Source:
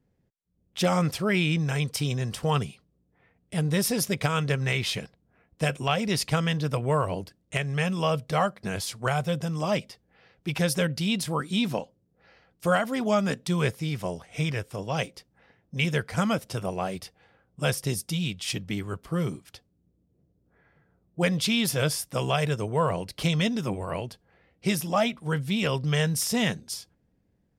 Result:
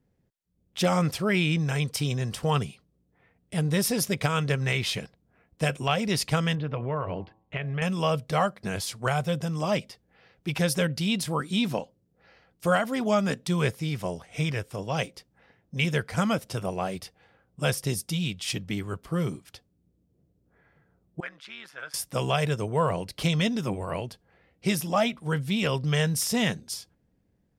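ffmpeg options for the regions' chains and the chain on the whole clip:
ffmpeg -i in.wav -filter_complex "[0:a]asettb=1/sr,asplit=3[link_01][link_02][link_03];[link_01]atrim=end=6.554[link_04];[link_02]atrim=start=6.55:end=7.82,asetpts=PTS-STARTPTS,afade=type=in:duration=0.004:curve=qsin,afade=type=out:start_time=1.266:duration=0.004:curve=qsin,bandreject=frequency=109.9:width_type=h:width=4,bandreject=frequency=219.8:width_type=h:width=4,bandreject=frequency=329.7:width_type=h:width=4,bandreject=frequency=439.6:width_type=h:width=4,bandreject=frequency=549.5:width_type=h:width=4,bandreject=frequency=659.4:width_type=h:width=4,bandreject=frequency=769.3:width_type=h:width=4,bandreject=frequency=879.2:width_type=h:width=4,bandreject=frequency=989.1:width_type=h:width=4,bandreject=frequency=1099:width_type=h:width=4,acompressor=threshold=-28dB:ratio=2:attack=3.2:release=140:knee=1:detection=peak,lowpass=frequency=3100:width=0.5412,lowpass=frequency=3100:width=1.3066[link_05];[link_03]atrim=start=7.816[link_06];[link_04][link_05]acrossfade=duration=0.004:curve1=hsin:curve2=qsin[link_07];[link_07][link_06]acrossfade=duration=0.004:curve1=qsin:curve2=hsin,asettb=1/sr,asplit=3[link_08][link_09][link_10];[link_08]atrim=end=21.204[link_11];[link_09]atrim=start=21.2:end=21.94,asetpts=PTS-STARTPTS,afade=type=in:duration=0.004:curve=qsin,afade=type=out:start_time=0.736:duration=0.004:curve=qsin,tremolo=f=140:d=0.71,bandpass=frequency=1500:width_type=q:width=2.9[link_12];[link_10]atrim=start=21.936[link_13];[link_11][link_12]acrossfade=duration=0.004:curve1=hsin:curve2=qsin[link_14];[link_14][link_13]acrossfade=duration=0.004:curve1=qsin:curve2=hsin" out.wav

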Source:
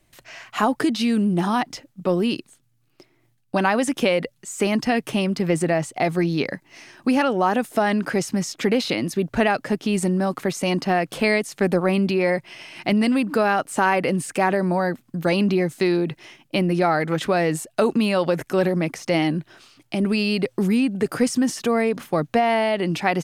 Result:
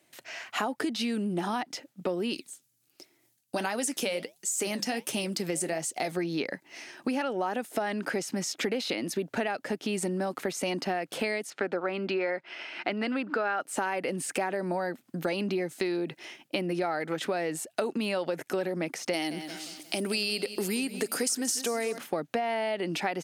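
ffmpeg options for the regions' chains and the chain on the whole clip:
ffmpeg -i in.wav -filter_complex "[0:a]asettb=1/sr,asplit=3[link_01][link_02][link_03];[link_01]atrim=end=2.334[link_04];[link_02]atrim=start=2.33:end=6.12,asetpts=PTS-STARTPTS,afade=type=in:duration=0.004:curve=qsin,afade=type=out:start_time=3.786:duration=0.004:curve=qsin,bass=frequency=250:gain=2,treble=frequency=4000:gain=13,flanger=delay=2.9:depth=9.9:regen=-71:speed=1.4:shape=triangular[link_05];[link_03]atrim=start=6.116[link_06];[link_04][link_05]acrossfade=duration=0.004:curve1=hsin:curve2=qsin[link_07];[link_07][link_06]acrossfade=duration=0.004:curve1=qsin:curve2=hsin,asettb=1/sr,asplit=3[link_08][link_09][link_10];[link_08]atrim=end=11.504[link_11];[link_09]atrim=start=11.5:end=13.61,asetpts=PTS-STARTPTS,afade=type=in:duration=0.004:curve=qsin,afade=type=out:start_time=2.106:duration=0.004:curve=qsin,highpass=240,lowpass=3900,equalizer=frequency=1400:width=3.4:gain=7.5[link_12];[link_10]atrim=start=13.606[link_13];[link_11][link_12]acrossfade=duration=0.004:curve1=hsin:curve2=qsin[link_14];[link_14][link_13]acrossfade=duration=0.004:curve1=qsin:curve2=hsin,asettb=1/sr,asplit=3[link_15][link_16][link_17];[link_15]atrim=end=19.134[link_18];[link_16]atrim=start=19.13:end=21.98,asetpts=PTS-STARTPTS,afade=type=in:duration=0.004:curve=qsin,afade=type=out:start_time=2.846:duration=0.004:curve=qsin,bass=frequency=250:gain=-5,treble=frequency=4000:gain=14,acompressor=mode=upward:threshold=-38dB:ratio=2.5:attack=3.2:release=140:knee=2.83:detection=peak,aecho=1:1:178|356|534|712:0.178|0.0765|0.0329|0.0141,atrim=end_sample=125685[link_19];[link_17]atrim=start=21.976[link_20];[link_18][link_19]acrossfade=duration=0.004:curve1=hsin:curve2=qsin[link_21];[link_21][link_20]acrossfade=duration=0.004:curve1=qsin:curve2=hsin,highpass=260,equalizer=frequency=1100:width_type=o:width=0.24:gain=-5.5,acompressor=threshold=-28dB:ratio=4" out.wav

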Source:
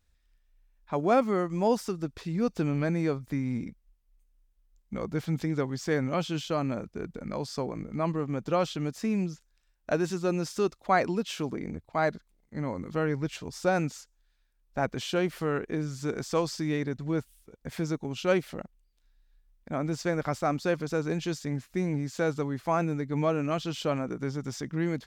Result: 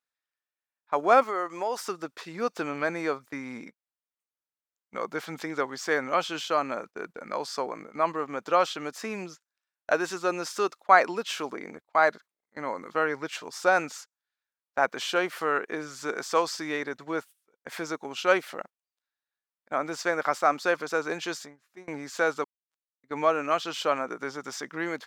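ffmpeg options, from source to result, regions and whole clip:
ffmpeg -i in.wav -filter_complex "[0:a]asettb=1/sr,asplit=3[link_01][link_02][link_03];[link_01]atrim=end=1.234[link_04];[link_02]atrim=start=1.23:end=1.84,asetpts=PTS-STARTPTS,afade=type=in:duration=0.004:curve=qsin,afade=type=out:start_time=0.606:duration=0.004:curve=qsin,equalizer=frequency=190:width=2:gain=-8.5,acompressor=threshold=-27dB:ratio=6:attack=3.2:release=140:knee=1:detection=peak[link_05];[link_03]atrim=start=1.836[link_06];[link_04][link_05]acrossfade=duration=0.004:curve1=hsin:curve2=qsin[link_07];[link_07][link_06]acrossfade=duration=0.004:curve1=qsin:curve2=hsin,asettb=1/sr,asplit=3[link_08][link_09][link_10];[link_08]atrim=end=21.364[link_11];[link_09]atrim=start=21.36:end=21.88,asetpts=PTS-STARTPTS,afade=type=in:duration=0.004:curve=qsin,afade=type=out:start_time=0.516:duration=0.004:curve=qsin,lowshelf=frequency=210:gain=6.5,acompressor=threshold=-40dB:ratio=4:attack=3.2:release=140:knee=1:detection=peak,asplit=2[link_12][link_13];[link_13]adelay=14,volume=-12dB[link_14];[link_12][link_14]amix=inputs=2:normalize=0,atrim=end_sample=22932[link_15];[link_10]atrim=start=21.876[link_16];[link_11][link_15]acrossfade=duration=0.004:curve1=hsin:curve2=qsin[link_17];[link_17][link_16]acrossfade=duration=0.004:curve1=qsin:curve2=hsin,asettb=1/sr,asplit=3[link_18][link_19][link_20];[link_18]atrim=end=22.444[link_21];[link_19]atrim=start=22.44:end=23.04,asetpts=PTS-STARTPTS,afade=type=in:duration=0.004:curve=qsin,afade=type=out:start_time=0.596:duration=0.004:curve=qsin,acrossover=split=420|3000[link_22][link_23][link_24];[link_23]acompressor=threshold=-57dB:ratio=1.5:attack=3.2:release=140:knee=2.83:detection=peak[link_25];[link_22][link_25][link_24]amix=inputs=3:normalize=0,bandreject=frequency=60:width_type=h:width=6,bandreject=frequency=120:width_type=h:width=6,bandreject=frequency=180:width_type=h:width=6,bandreject=frequency=240:width_type=h:width=6,bandreject=frequency=300:width_type=h:width=6,acrusher=bits=2:mix=0:aa=0.5[link_26];[link_20]atrim=start=23.036[link_27];[link_21][link_26]acrossfade=duration=0.004:curve1=hsin:curve2=qsin[link_28];[link_28][link_27]acrossfade=duration=0.004:curve1=qsin:curve2=hsin,highpass=460,agate=range=-16dB:threshold=-48dB:ratio=16:detection=peak,equalizer=frequency=1300:width_type=o:width=1.3:gain=6.5,volume=3dB" out.wav

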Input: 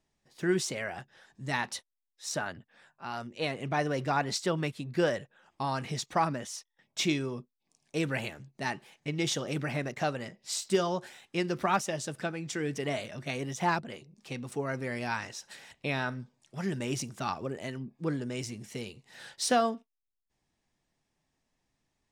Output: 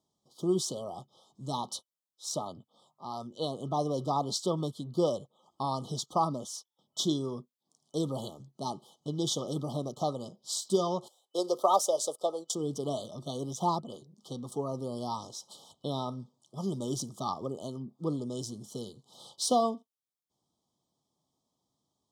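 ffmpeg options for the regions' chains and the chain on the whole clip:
ffmpeg -i in.wav -filter_complex "[0:a]asettb=1/sr,asplit=3[link_01][link_02][link_03];[link_01]atrim=end=11.084[link_04];[link_02]atrim=start=11.08:end=12.55,asetpts=PTS-STARTPTS,afade=type=in:duration=0.004:curve=qsin,afade=type=out:start_time=1.466:duration=0.004:curve=qsin,highpass=frequency=520:width_type=q:width=2.7,highshelf=frequency=5700:gain=9.5,agate=range=-17dB:threshold=-44dB:ratio=16:release=100:detection=peak[link_05];[link_03]atrim=start=12.546[link_06];[link_04][link_05]acrossfade=duration=0.004:curve1=hsin:curve2=qsin[link_07];[link_07][link_06]acrossfade=duration=0.004:curve1=qsin:curve2=hsin,highpass=110,afftfilt=real='re*(1-between(b*sr/4096,1300,3000))':imag='im*(1-between(b*sr/4096,1300,3000))':win_size=4096:overlap=0.75" out.wav

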